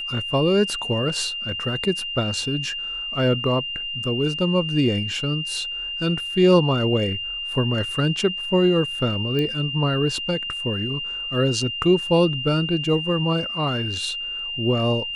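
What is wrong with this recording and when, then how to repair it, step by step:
whistle 2,800 Hz −27 dBFS
0:09.39: click −14 dBFS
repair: click removal
notch filter 2,800 Hz, Q 30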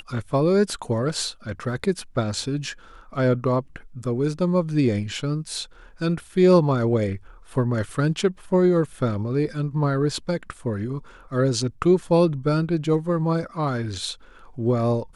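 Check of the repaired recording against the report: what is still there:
none of them is left

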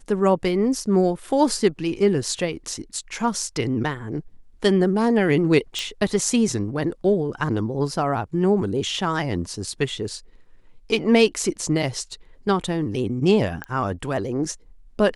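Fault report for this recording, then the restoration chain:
0:05.79: click −13 dBFS
0:13.64: click −16 dBFS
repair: click removal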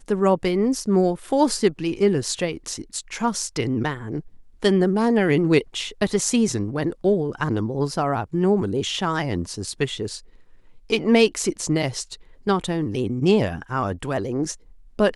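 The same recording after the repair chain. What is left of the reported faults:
0:13.64: click

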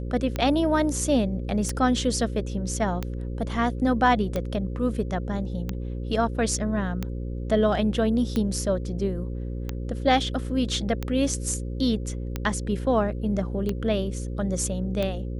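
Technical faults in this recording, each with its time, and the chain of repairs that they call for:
mains buzz 60 Hz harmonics 9 −31 dBFS
scratch tick 45 rpm −14 dBFS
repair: click removal
hum removal 60 Hz, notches 9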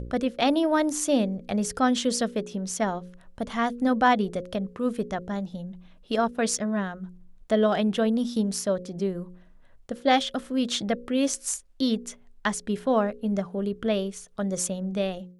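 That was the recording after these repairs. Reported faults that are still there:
none of them is left

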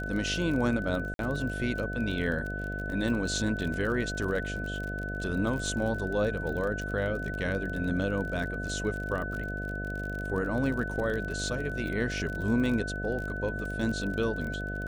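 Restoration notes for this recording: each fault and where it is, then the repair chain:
mains buzz 50 Hz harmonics 14 −36 dBFS
surface crackle 34 per second −34 dBFS
whistle 1,500 Hz −36 dBFS
0:01.14–0:01.19: drop-out 52 ms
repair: click removal
hum removal 50 Hz, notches 14
notch filter 1,500 Hz, Q 30
repair the gap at 0:01.14, 52 ms

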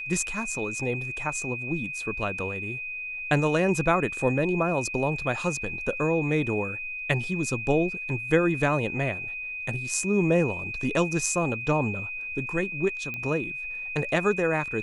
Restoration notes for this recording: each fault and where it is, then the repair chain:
whistle 2,500 Hz −32 dBFS
0:13.14: click −20 dBFS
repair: click removal
notch filter 2,500 Hz, Q 30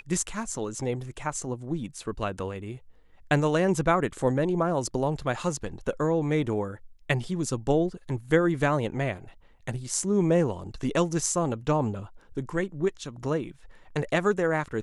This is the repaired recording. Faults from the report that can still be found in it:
none of them is left

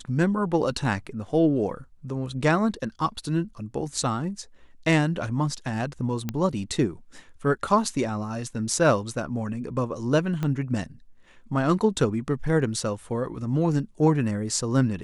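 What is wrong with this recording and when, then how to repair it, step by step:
0:06.29: click −14 dBFS
0:10.43: click −16 dBFS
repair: click removal

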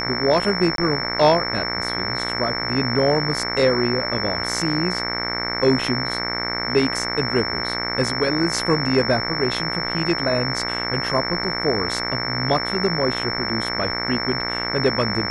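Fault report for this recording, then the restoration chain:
mains buzz 60 Hz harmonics 38 −28 dBFS
whistle 5,400 Hz −26 dBFS
0:00.76–0:00.78: drop-out 22 ms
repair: hum removal 60 Hz, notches 38
notch filter 5,400 Hz, Q 30
repair the gap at 0:00.76, 22 ms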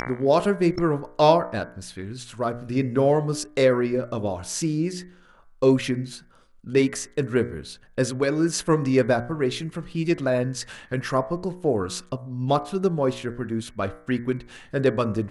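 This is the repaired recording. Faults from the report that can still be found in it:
none of them is left

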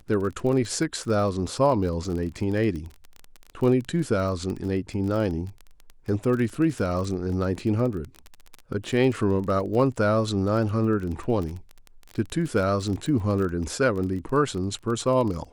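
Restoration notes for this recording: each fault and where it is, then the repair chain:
surface crackle 25 per second −30 dBFS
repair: click removal

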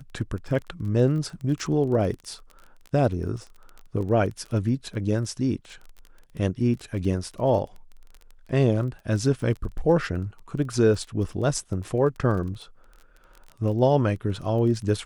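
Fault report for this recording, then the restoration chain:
surface crackle 20 per second −33 dBFS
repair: click removal

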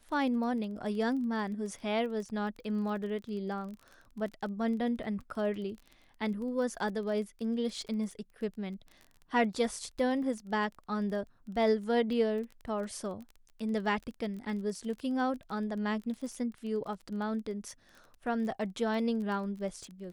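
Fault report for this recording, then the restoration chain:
surface crackle 21 per second −40 dBFS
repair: click removal

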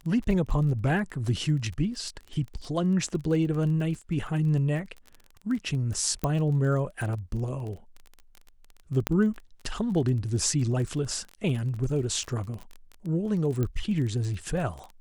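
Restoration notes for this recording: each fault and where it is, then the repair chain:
surface crackle 25 per second −34 dBFS
0:06.24: click −14 dBFS
0:09.07: click −10 dBFS
0:13.63: click −17 dBFS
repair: click removal

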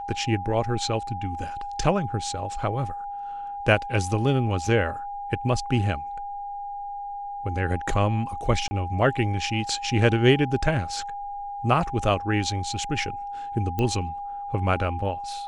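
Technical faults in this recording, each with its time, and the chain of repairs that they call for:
whistle 810 Hz −31 dBFS
0:08.68–0:08.71: drop-out 30 ms
0:13.79: click −14 dBFS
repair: click removal
notch filter 810 Hz, Q 30
repair the gap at 0:08.68, 30 ms

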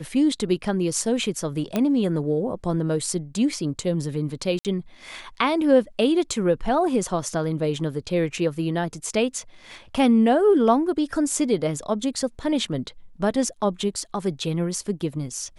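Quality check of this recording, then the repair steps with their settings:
0:01.76: click −10 dBFS
0:04.59–0:04.65: drop-out 58 ms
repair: click removal
repair the gap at 0:04.59, 58 ms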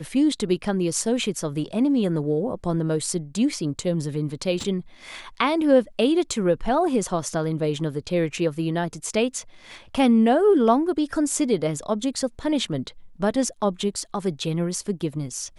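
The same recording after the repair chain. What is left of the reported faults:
0:01.76: click

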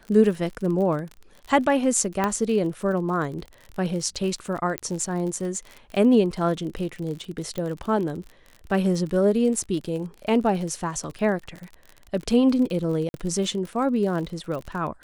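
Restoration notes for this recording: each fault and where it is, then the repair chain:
surface crackle 44 per second −31 dBFS
0:02.24: click −10 dBFS
0:04.78: click −11 dBFS
0:07.58: click −17 dBFS
0:13.09–0:13.14: drop-out 51 ms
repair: click removal
repair the gap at 0:13.09, 51 ms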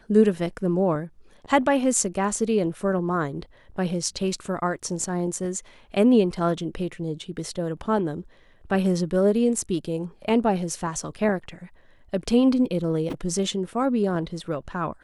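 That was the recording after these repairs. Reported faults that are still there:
0:02.24: click
0:04.78: click

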